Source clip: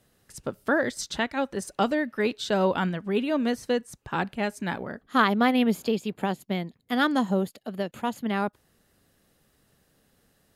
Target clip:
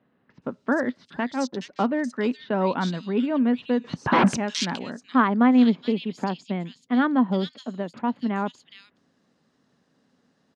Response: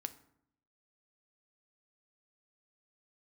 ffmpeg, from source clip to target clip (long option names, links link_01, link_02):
-filter_complex "[0:a]asettb=1/sr,asplit=3[link_01][link_02][link_03];[link_01]atrim=end=1.054[link_04];[link_02]atrim=start=1.05:end=1.62,asetpts=PTS-STARTPTS,afade=type=in:duration=0.004:curve=qsin,afade=type=out:start_time=0.566:duration=0.004:curve=qsin,adynamicsmooth=sensitivity=4:basefreq=630[link_05];[link_03]atrim=start=1.616[link_06];[link_04][link_05]acrossfade=duration=0.004:curve1=hsin:curve2=qsin[link_07];[link_07][link_06]acrossfade=duration=0.004:curve1=qsin:curve2=hsin,asettb=1/sr,asplit=3[link_08][link_09][link_10];[link_08]atrim=end=3.844[link_11];[link_09]atrim=start=3.84:end=4.37,asetpts=PTS-STARTPTS,afade=type=in:duration=0.004:curve=qsin,afade=type=out:start_time=0.526:duration=0.004:curve=qsin,aeval=exprs='0.211*sin(PI/2*7.08*val(0)/0.211)':channel_layout=same[link_12];[link_10]atrim=start=4.366[link_13];[link_11][link_12]acrossfade=duration=0.004:curve1=hsin:curve2=qsin[link_14];[link_14][link_13]acrossfade=duration=0.004:curve1=qsin:curve2=hsin,highpass=150,equalizer=frequency=170:width_type=q:width=4:gain=4,equalizer=frequency=250:width_type=q:width=4:gain=9,equalizer=frequency=1000:width_type=q:width=4:gain=5,lowpass=frequency=6200:width=0.5412,lowpass=frequency=6200:width=1.3066,acrossover=split=2800[link_15][link_16];[link_16]adelay=420[link_17];[link_15][link_17]amix=inputs=2:normalize=0,volume=-1.5dB"